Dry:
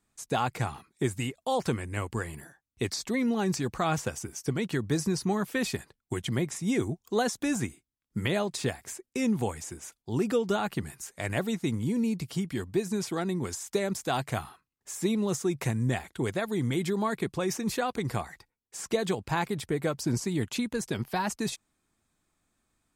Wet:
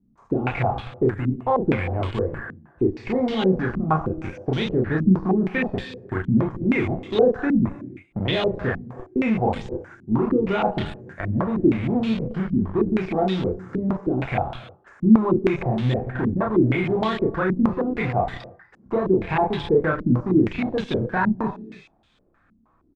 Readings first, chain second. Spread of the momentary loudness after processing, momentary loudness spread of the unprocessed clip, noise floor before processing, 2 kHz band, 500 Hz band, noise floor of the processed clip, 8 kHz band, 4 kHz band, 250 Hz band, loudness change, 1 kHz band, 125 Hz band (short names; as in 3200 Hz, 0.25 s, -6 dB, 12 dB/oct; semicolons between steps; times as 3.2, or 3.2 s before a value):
10 LU, 8 LU, -84 dBFS, +6.0 dB, +8.0 dB, -61 dBFS, under -20 dB, +2.0 dB, +9.0 dB, +8.0 dB, +7.0 dB, +7.5 dB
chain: G.711 law mismatch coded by mu; doubler 32 ms -2 dB; non-linear reverb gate 0.35 s flat, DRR 10 dB; de-esser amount 90%; in parallel at -7.5 dB: Schmitt trigger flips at -28 dBFS; on the sum: stepped low-pass 6.4 Hz 230–3400 Hz